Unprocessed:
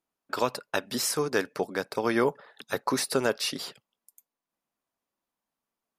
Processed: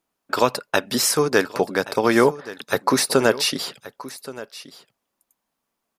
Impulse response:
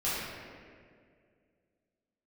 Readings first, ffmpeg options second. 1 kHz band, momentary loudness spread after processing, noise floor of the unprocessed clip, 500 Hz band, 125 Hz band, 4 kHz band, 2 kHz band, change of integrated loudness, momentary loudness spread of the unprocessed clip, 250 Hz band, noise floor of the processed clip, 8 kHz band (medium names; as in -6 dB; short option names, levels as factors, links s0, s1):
+8.5 dB, 18 LU, under -85 dBFS, +8.5 dB, +8.5 dB, +8.5 dB, +8.5 dB, +8.5 dB, 10 LU, +8.5 dB, -80 dBFS, +8.5 dB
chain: -af "aecho=1:1:1125:0.141,volume=2.66"